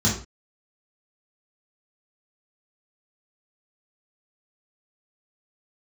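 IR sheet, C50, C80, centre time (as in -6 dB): 6.0 dB, 11.0 dB, 31 ms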